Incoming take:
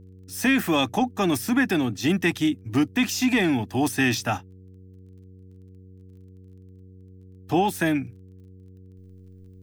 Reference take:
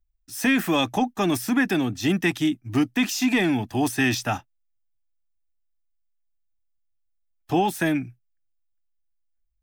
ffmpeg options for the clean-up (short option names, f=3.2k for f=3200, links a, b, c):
-af "adeclick=t=4,bandreject=f=93.5:t=h:w=4,bandreject=f=187:t=h:w=4,bandreject=f=280.5:t=h:w=4,bandreject=f=374:t=h:w=4,bandreject=f=467.5:t=h:w=4,asetnsamples=n=441:p=0,asendcmd='8.98 volume volume -11dB',volume=0dB"